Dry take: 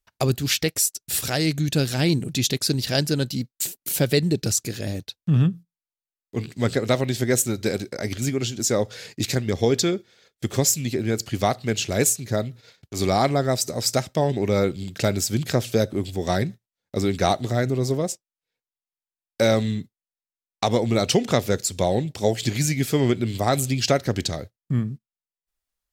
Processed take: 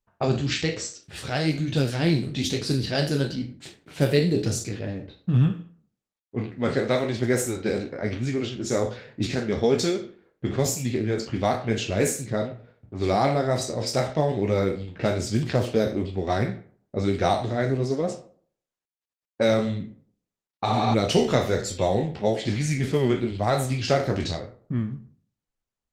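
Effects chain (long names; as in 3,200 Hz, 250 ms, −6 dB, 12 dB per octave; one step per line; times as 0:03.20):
peak hold with a decay on every bin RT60 0.44 s
tape delay 86 ms, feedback 39%, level −20.5 dB, low-pass 3,800 Hz
flanger 1.1 Hz, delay 7.5 ms, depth 7.7 ms, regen −31%
0:05.50–0:07.69: low-shelf EQ 100 Hz −4.5 dB
low-pass that shuts in the quiet parts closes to 810 Hz, open at −19.5 dBFS
high-shelf EQ 6,700 Hz −11 dB
0:20.68–0:20.92: healed spectral selection 330–6,700 Hz before
level +1.5 dB
Opus 24 kbit/s 48,000 Hz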